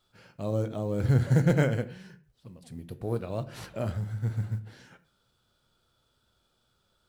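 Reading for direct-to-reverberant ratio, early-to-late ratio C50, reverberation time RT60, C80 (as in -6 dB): 10.5 dB, 16.0 dB, not exponential, 20.0 dB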